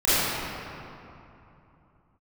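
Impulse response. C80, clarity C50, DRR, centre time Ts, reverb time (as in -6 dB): -4.0 dB, -7.5 dB, -15.0 dB, 210 ms, 2.9 s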